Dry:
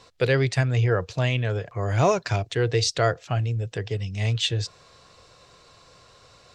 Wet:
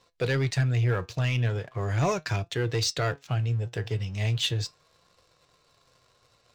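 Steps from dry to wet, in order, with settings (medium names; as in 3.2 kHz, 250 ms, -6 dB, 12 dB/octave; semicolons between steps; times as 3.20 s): dynamic bell 610 Hz, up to -5 dB, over -34 dBFS, Q 1.3; waveshaping leveller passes 2; flange 0.39 Hz, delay 5.6 ms, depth 3.2 ms, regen +77%; trim -4.5 dB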